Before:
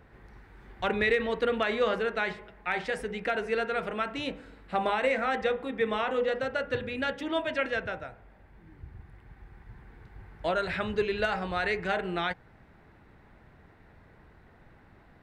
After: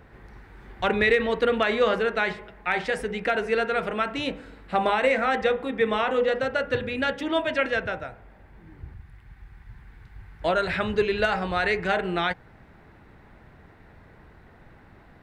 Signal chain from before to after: 8.94–10.42 s: peaking EQ 440 Hz -10.5 dB 2.5 oct; trim +5 dB

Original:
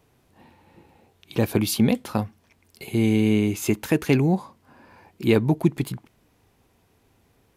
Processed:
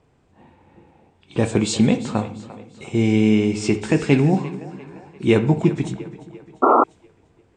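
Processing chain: knee-point frequency compression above 3.3 kHz 1.5:1; two-band feedback delay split 380 Hz, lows 207 ms, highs 347 ms, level -14.5 dB; reverberation RT60 0.50 s, pre-delay 12 ms, DRR 8 dB; painted sound noise, 6.62–6.84 s, 230–1400 Hz -16 dBFS; tape noise reduction on one side only decoder only; trim +2.5 dB

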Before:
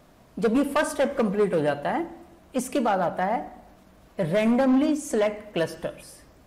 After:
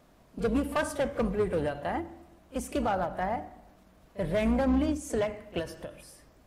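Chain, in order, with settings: octave divider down 2 oct, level -6 dB; reverse echo 36 ms -18 dB; endings held to a fixed fall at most 160 dB/s; trim -5.5 dB

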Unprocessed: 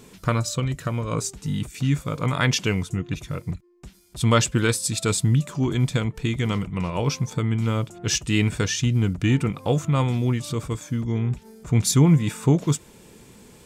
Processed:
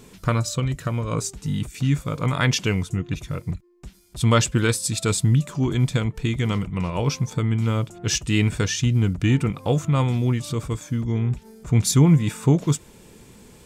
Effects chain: bass shelf 70 Hz +6 dB

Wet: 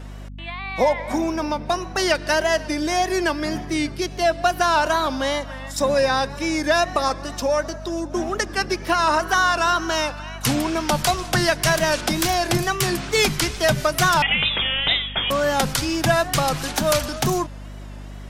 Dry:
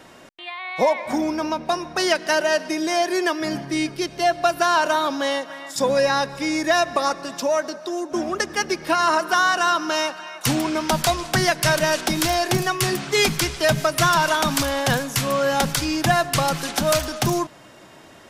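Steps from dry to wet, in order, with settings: 14.22–15.30 s: frequency inversion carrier 3.6 kHz; wow and flutter 93 cents; hum 50 Hz, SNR 14 dB

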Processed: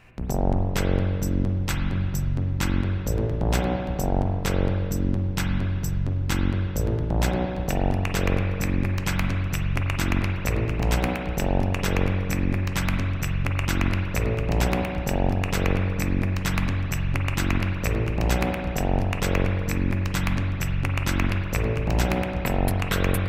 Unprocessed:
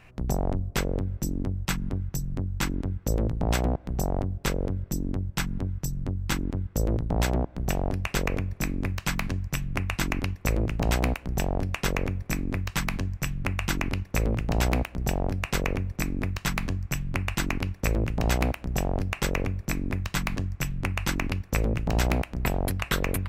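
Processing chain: spring tank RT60 2.1 s, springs 43/52 ms, chirp 65 ms, DRR 1.5 dB

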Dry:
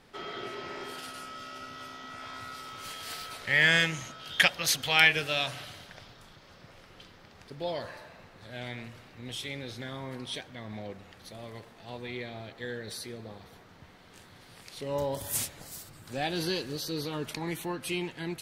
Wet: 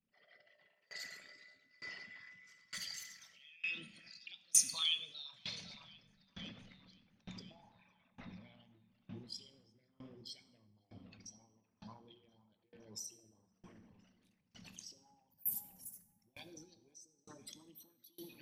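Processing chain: resonances exaggerated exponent 3; Doppler pass-by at 5.36 s, 10 m/s, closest 4.1 m; recorder AGC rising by 50 dB/s; resonant low shelf 260 Hz +11 dB, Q 3; formant shift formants +6 st; pre-emphasis filter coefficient 0.97; feedback echo behind a low-pass 514 ms, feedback 63%, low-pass 2.1 kHz, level -10.5 dB; on a send at -8.5 dB: reverberation RT60 1.2 s, pre-delay 4 ms; on the sum: sawtooth tremolo in dB decaying 1.1 Hz, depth 28 dB; trim +8 dB

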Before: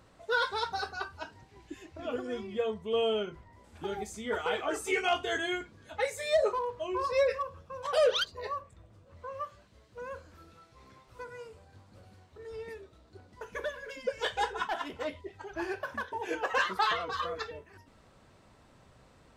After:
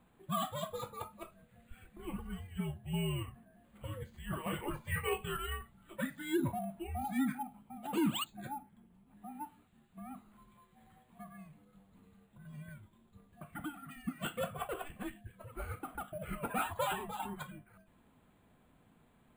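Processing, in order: steep low-pass 4 kHz 36 dB/octave; frequency shift -290 Hz; careless resampling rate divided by 4×, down filtered, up hold; trim -6.5 dB

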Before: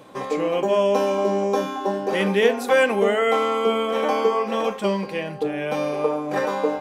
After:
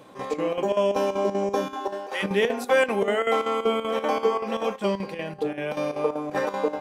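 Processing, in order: 1.74–2.22 s: high-pass 250 Hz -> 890 Hz 12 dB/octave; square tremolo 5.2 Hz, depth 65%, duty 75%; trim -2.5 dB

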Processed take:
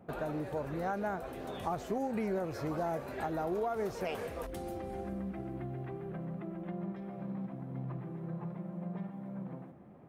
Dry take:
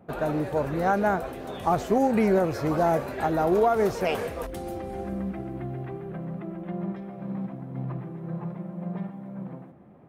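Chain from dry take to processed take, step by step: compression 2:1, threshold -36 dBFS, peak gain reduction 10 dB; trim -3 dB

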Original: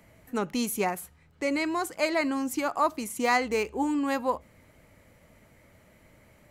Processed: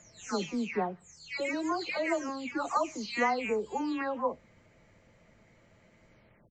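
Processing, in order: delay that grows with frequency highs early, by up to 427 ms; resampled via 16 kHz; trim -2.5 dB

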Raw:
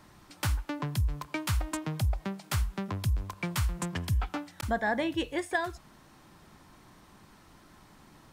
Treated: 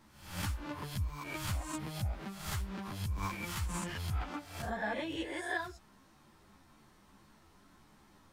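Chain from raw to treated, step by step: reverse spectral sustain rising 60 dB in 0.65 s; 2.80–4.22 s: transient shaper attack -2 dB, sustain +10 dB; three-phase chorus; trim -5.5 dB

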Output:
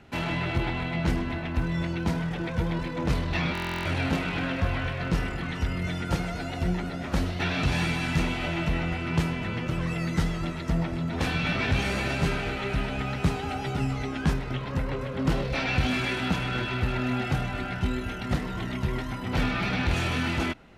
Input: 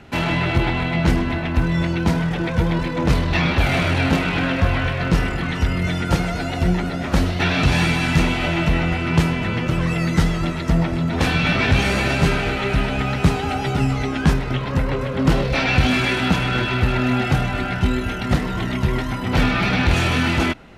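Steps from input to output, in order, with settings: buffer glitch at 3.53 s, samples 1024, times 13; trim -8.5 dB

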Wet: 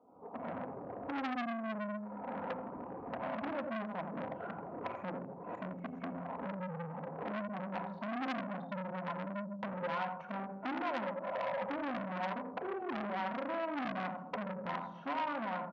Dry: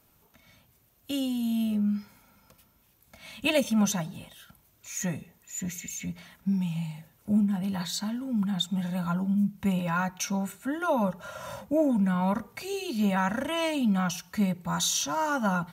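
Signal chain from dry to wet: local Wiener filter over 25 samples; recorder AGC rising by 62 dB/s; low-pass 1.1 kHz 24 dB/octave; reverb removal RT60 0.65 s; high-pass 430 Hz 12 dB/octave; peak limiter -27.5 dBFS, peak gain reduction 9.5 dB; compression 2:1, threshold -46 dBFS, peak gain reduction 8.5 dB; delay 86 ms -8 dB; reverberation RT60 0.90 s, pre-delay 4 ms, DRR 4 dB; transformer saturation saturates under 1.9 kHz; trim +7 dB

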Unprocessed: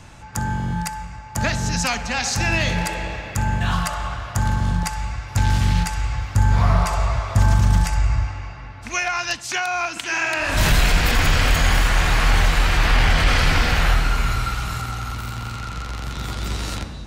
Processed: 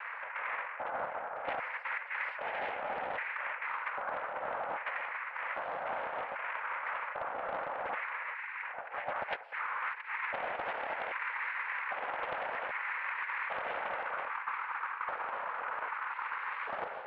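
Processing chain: spectral selection erased 8.34–8.62 s, 610–1500 Hz; in parallel at +1 dB: upward compressor, threshold -19 dBFS; on the sum: saturation -2.5 dBFS, distortion -21 dB; LFO high-pass square 0.63 Hz 660–1600 Hz; noise-vocoded speech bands 8; elliptic band-pass 440–2100 Hz, stop band 50 dB; reverse; compression 12:1, threshold -26 dBFS, peak gain reduction 18.5 dB; reverse; loudspeaker Doppler distortion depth 0.24 ms; trim -7.5 dB

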